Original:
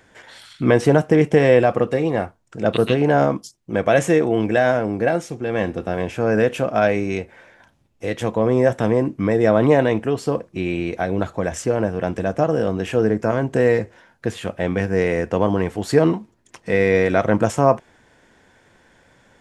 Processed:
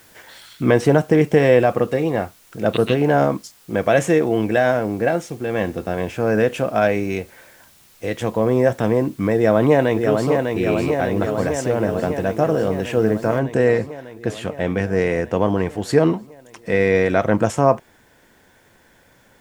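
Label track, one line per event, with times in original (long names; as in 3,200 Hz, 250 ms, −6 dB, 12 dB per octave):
9.360000	10.310000	delay throw 600 ms, feedback 75%, level −4.5 dB
13.390000	13.390000	noise floor change −52 dB −64 dB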